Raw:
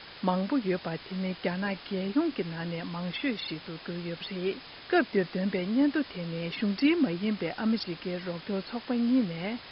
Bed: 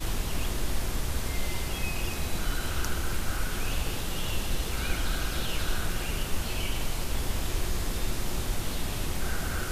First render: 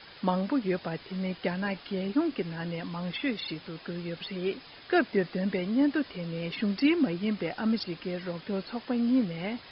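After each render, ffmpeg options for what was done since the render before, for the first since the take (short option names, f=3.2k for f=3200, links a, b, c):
-af "afftdn=nr=6:nf=-47"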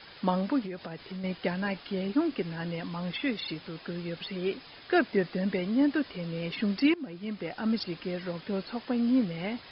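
-filter_complex "[0:a]asettb=1/sr,asplit=3[a][b][c];[a]atrim=end=0.654[d];[b]atrim=start=0.65:end=1.24,asetpts=PTS-STARTPTS,afade=t=in:d=0.004:c=qsin,afade=t=out:st=0.586:d=0.004:c=qsin,acompressor=threshold=-34dB:ratio=6:attack=3.2:release=140:knee=1:detection=peak[e];[c]atrim=start=1.236[f];[d][e]acrossfade=d=0.004:c1=hsin:c2=qsin[g];[g][f]acrossfade=d=0.004:c1=qsin:c2=hsin,asplit=2[h][i];[h]atrim=end=6.94,asetpts=PTS-STARTPTS,afade=t=out:st=6.936:d=0.004:c=hsin:silence=0.141254[j];[i]atrim=start=6.94,asetpts=PTS-STARTPTS,afade=t=in:d=0.87:silence=0.141254[k];[j][k]concat=n=2:v=0:a=1"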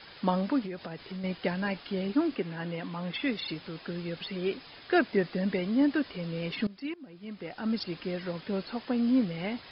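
-filter_complex "[0:a]asettb=1/sr,asplit=3[a][b][c];[a]atrim=end=2.364[d];[b]atrim=start=2.36:end=3.14,asetpts=PTS-STARTPTS,afade=t=in:d=0.004:c=qsin,afade=t=out:st=0.776:d=0.004:c=qsin,highpass=140,lowpass=3.8k[e];[c]atrim=start=3.136[f];[d][e]acrossfade=d=0.004:c1=hsin:c2=qsin[g];[g][f]acrossfade=d=0.004:c1=qsin:c2=hsin,asplit=2[h][i];[h]atrim=end=6.67,asetpts=PTS-STARTPTS,afade=t=out:st=6.666:d=0.004:c=hsin:silence=0.1[j];[i]atrim=start=6.67,asetpts=PTS-STARTPTS,afade=t=in:d=1.32:silence=0.1[k];[j][k]concat=n=2:v=0:a=1"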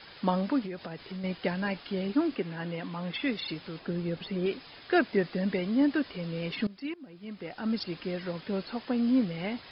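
-filter_complex "[0:a]asettb=1/sr,asplit=3[a][b][c];[a]atrim=end=3.794[d];[b]atrim=start=3.79:end=4.46,asetpts=PTS-STARTPTS,afade=t=in:d=0.004:c=qsin,afade=t=out:st=0.666:d=0.004:c=qsin,tiltshelf=f=970:g=4.5[e];[c]atrim=start=4.456[f];[d][e]acrossfade=d=0.004:c1=hsin:c2=qsin[g];[g][f]acrossfade=d=0.004:c1=qsin:c2=hsin"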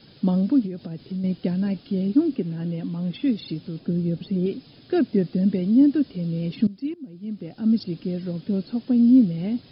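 -af "equalizer=f=125:t=o:w=1:g=11,equalizer=f=250:t=o:w=1:g=9,equalizer=f=1k:t=o:w=1:g=-10,equalizer=f=2k:t=o:w=1:g=-10"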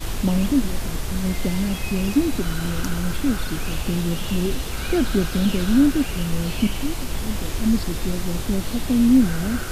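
-filter_complex "[1:a]volume=3dB[a];[0:a][a]amix=inputs=2:normalize=0"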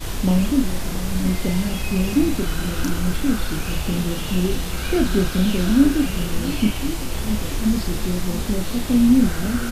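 -filter_complex "[0:a]asplit=2[a][b];[b]adelay=33,volume=-5dB[c];[a][c]amix=inputs=2:normalize=0,aecho=1:1:678:0.224"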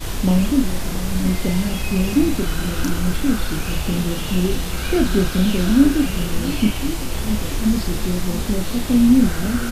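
-af "volume=1.5dB"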